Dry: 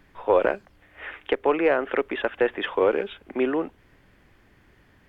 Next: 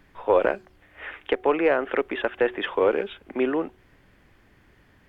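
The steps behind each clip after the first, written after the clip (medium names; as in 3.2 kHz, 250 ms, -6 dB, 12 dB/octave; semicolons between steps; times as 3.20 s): de-hum 370.1 Hz, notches 2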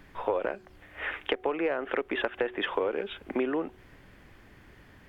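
compression 8:1, threshold -29 dBFS, peak gain reduction 14.5 dB; trim +3.5 dB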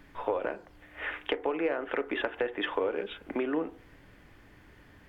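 FDN reverb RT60 0.46 s, low-frequency decay 0.95×, high-frequency decay 0.35×, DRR 11 dB; trim -2 dB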